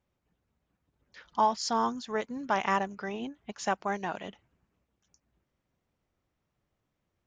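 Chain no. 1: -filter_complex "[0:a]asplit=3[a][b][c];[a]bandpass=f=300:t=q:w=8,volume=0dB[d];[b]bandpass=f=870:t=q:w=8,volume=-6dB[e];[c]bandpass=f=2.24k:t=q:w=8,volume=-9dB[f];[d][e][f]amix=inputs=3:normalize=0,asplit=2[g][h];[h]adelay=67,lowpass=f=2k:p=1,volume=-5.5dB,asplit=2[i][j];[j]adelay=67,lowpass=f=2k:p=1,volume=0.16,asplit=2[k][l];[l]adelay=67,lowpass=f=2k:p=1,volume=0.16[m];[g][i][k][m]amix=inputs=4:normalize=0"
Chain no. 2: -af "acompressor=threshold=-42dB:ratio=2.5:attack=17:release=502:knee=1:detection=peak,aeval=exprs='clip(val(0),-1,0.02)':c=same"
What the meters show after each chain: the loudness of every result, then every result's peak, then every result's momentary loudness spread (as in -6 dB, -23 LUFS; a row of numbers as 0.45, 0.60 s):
-41.0, -43.0 LUFS; -23.0, -26.0 dBFS; 15, 8 LU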